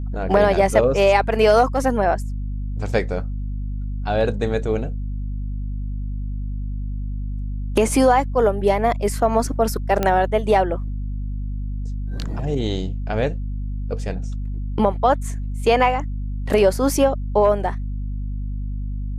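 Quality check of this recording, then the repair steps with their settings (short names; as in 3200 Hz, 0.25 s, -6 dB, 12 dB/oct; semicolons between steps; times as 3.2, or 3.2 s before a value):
hum 50 Hz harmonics 5 -26 dBFS
10.03 pop -7 dBFS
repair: de-click; de-hum 50 Hz, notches 5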